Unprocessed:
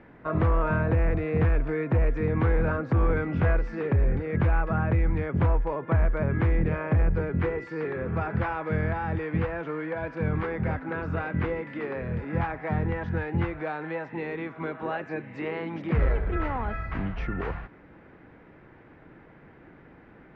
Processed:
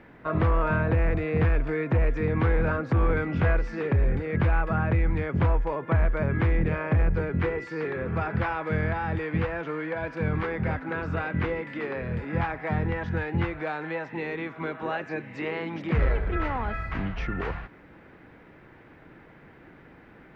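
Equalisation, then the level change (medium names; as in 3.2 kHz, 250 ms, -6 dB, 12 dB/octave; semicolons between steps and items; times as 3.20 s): treble shelf 2.8 kHz +9 dB; 0.0 dB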